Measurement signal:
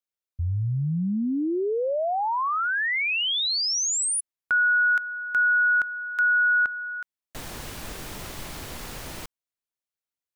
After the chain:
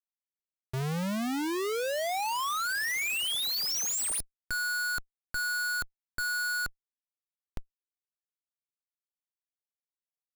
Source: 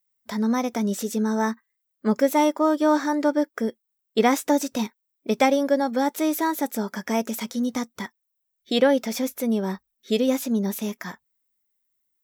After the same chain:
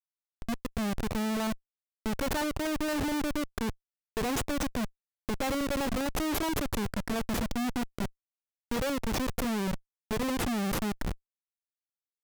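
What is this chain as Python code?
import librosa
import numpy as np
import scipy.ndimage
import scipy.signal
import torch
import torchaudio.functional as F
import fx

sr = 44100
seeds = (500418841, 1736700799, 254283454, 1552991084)

y = fx.fade_in_head(x, sr, length_s=1.43)
y = fx.high_shelf(y, sr, hz=9500.0, db=3.0)
y = fx.spec_gate(y, sr, threshold_db=-15, keep='strong')
y = fx.schmitt(y, sr, flips_db=-28.0)
y = y * 10.0 ** (-4.5 / 20.0)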